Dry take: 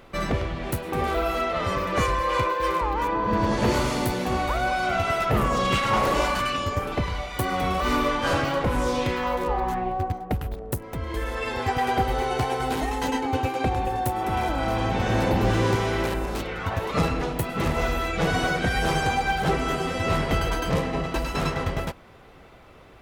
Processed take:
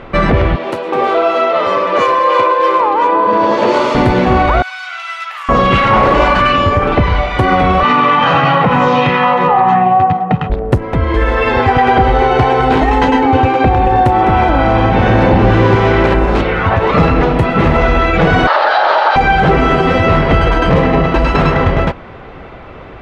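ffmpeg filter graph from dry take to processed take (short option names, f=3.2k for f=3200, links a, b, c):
-filter_complex "[0:a]asettb=1/sr,asplit=3[a][b][c];[a]atrim=end=0.564[d];[b]atrim=start=0.56:end=3.95,asetpts=PTS-STARTPTS,afade=t=in:d=0.004:c=qsin,afade=t=out:st=3.386:d=0.004:c=qsin,highpass=450,equalizer=f=1.8k:t=o:w=1.2:g=-7.5,bandreject=f=750:w=12[e];[c]atrim=start=3.946[f];[d][e]acrossfade=d=0.004:c1=hsin:c2=qsin[g];[g][f]acrossfade=d=0.004:c1=qsin:c2=hsin,asettb=1/sr,asplit=3[h][i][j];[h]atrim=end=4.624[k];[i]atrim=start=4.62:end=5.49,asetpts=PTS-STARTPTS,afade=t=in:d=0.004:c=qsin,afade=t=out:st=0.866:d=0.004:c=qsin,highpass=f=940:w=0.5412,highpass=f=940:w=1.3066,aderivative[l];[j]atrim=start=5.486[m];[k][l]acrossfade=d=0.004:c1=hsin:c2=qsin[n];[n][m]acrossfade=d=0.004:c1=qsin:c2=hsin,asettb=1/sr,asplit=3[o][p][q];[o]atrim=end=7.834[r];[p]atrim=start=7.83:end=10.5,asetpts=PTS-STARTPTS,afade=t=in:d=0.004:c=qsin,afade=t=out:st=2.666:d=0.004:c=qsin,highpass=f=140:w=0.5412,highpass=f=140:w=1.3066,equalizer=f=160:t=q:w=4:g=6,equalizer=f=370:t=q:w=4:g=-4,equalizer=f=580:t=q:w=4:g=-10,equalizer=f=900:t=q:w=4:g=8,equalizer=f=2.8k:t=q:w=4:g=4,equalizer=f=5.1k:t=q:w=4:g=-4,lowpass=f=6.8k:w=0.5412,lowpass=f=6.8k:w=1.3066,aecho=1:1:1.6:0.48,atrim=end_sample=117747[s];[q]atrim=start=10.496[t];[r][s]acrossfade=d=0.004:c1=hsin:c2=qsin[u];[u][t]acrossfade=d=0.004:c1=qsin:c2=hsin,asettb=1/sr,asplit=3[v][w][x];[v]atrim=end=18.474[y];[w]atrim=start=18.47:end=19.16,asetpts=PTS-STARTPTS,afade=t=in:d=0.004:c=qsin,afade=t=out:st=0.686:d=0.004:c=qsin,aeval=exprs='abs(val(0))':c=same,highpass=f=480:w=0.5412,highpass=f=480:w=1.3066,equalizer=f=600:t=q:w=4:g=9,equalizer=f=860:t=q:w=4:g=9,equalizer=f=1.3k:t=q:w=4:g=7,equalizer=f=2.3k:t=q:w=4:g=-8,equalizer=f=4.2k:t=q:w=4:g=7,lowpass=f=4.9k:w=0.5412,lowpass=f=4.9k:w=1.3066[z];[x]atrim=start=19.156[aa];[y][z]acrossfade=d=0.004:c1=hsin:c2=qsin[ab];[ab][aa]acrossfade=d=0.004:c1=qsin:c2=hsin,lowpass=2.6k,alimiter=level_in=18.5dB:limit=-1dB:release=50:level=0:latency=1,volume=-1dB"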